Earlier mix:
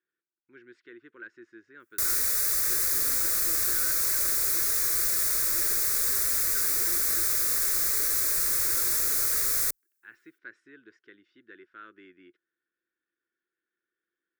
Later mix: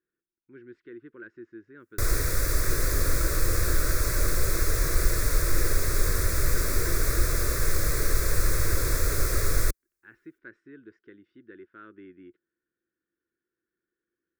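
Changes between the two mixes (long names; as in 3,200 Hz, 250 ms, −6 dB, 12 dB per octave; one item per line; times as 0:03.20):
background +7.0 dB
master: add spectral tilt −4 dB per octave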